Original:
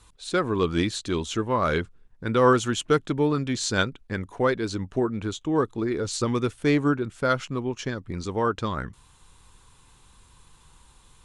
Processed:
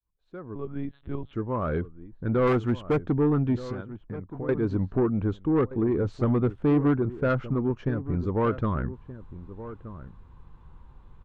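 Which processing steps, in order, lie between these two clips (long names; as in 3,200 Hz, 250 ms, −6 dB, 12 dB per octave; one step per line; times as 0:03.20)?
fade in at the beginning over 3.08 s
low-pass filter 1,300 Hz 12 dB per octave
low-shelf EQ 290 Hz +7.5 dB
0:02.47–0:03.08: gain into a clipping stage and back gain 16.5 dB
0:03.67–0:04.49: downward compressor 10 to 1, threshold −34 dBFS, peak gain reduction 18.5 dB
soft clipping −16.5 dBFS, distortion −14 dB
slap from a distant wall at 210 metres, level −14 dB
0:00.55–0:01.33: one-pitch LPC vocoder at 8 kHz 140 Hz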